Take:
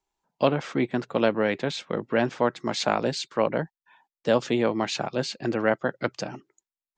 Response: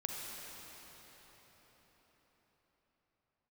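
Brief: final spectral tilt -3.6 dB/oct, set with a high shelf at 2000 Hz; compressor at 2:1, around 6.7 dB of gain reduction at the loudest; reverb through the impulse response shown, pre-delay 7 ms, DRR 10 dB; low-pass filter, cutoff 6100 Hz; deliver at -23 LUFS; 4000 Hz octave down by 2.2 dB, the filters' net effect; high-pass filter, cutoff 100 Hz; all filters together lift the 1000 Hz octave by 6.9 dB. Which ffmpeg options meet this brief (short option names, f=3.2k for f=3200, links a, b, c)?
-filter_complex "[0:a]highpass=100,lowpass=6.1k,equalizer=f=1k:t=o:g=8,highshelf=f=2k:g=6,equalizer=f=4k:t=o:g=-8,acompressor=threshold=-25dB:ratio=2,asplit=2[a][b];[1:a]atrim=start_sample=2205,adelay=7[c];[b][c]afir=irnorm=-1:irlink=0,volume=-11.5dB[d];[a][d]amix=inputs=2:normalize=0,volume=5.5dB"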